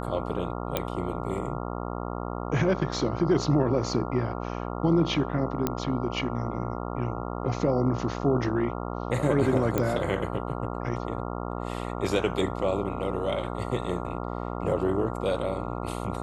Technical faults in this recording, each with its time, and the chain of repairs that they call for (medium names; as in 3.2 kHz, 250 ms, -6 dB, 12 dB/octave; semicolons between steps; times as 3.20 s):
buzz 60 Hz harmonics 23 -33 dBFS
0.77 s: pop -11 dBFS
5.67 s: pop -11 dBFS
9.78 s: pop -12 dBFS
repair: de-click; de-hum 60 Hz, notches 23